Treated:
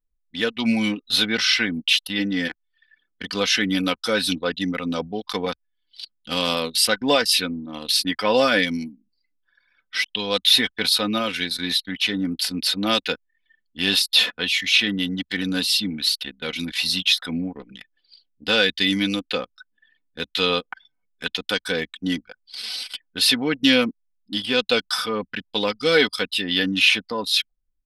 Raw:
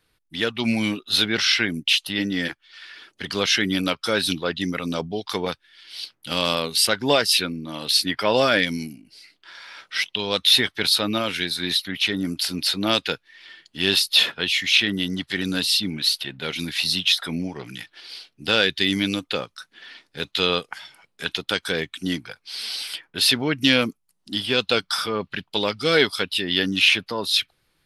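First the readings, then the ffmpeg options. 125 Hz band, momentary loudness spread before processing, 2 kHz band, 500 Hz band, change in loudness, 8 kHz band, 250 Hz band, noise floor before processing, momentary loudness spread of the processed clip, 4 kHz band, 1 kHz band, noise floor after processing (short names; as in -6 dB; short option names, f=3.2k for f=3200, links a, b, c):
-2.0 dB, 16 LU, +0.5 dB, +0.5 dB, +0.5 dB, 0.0 dB, +1.5 dB, -71 dBFS, 12 LU, 0.0 dB, 0.0 dB, -73 dBFS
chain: -af "anlmdn=25.1,aecho=1:1:4:0.55,volume=-1dB"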